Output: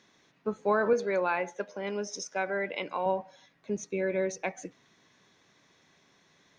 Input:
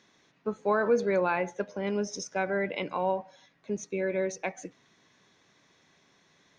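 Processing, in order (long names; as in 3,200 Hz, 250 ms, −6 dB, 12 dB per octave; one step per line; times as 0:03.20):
0:00.93–0:03.06: high-pass filter 410 Hz 6 dB per octave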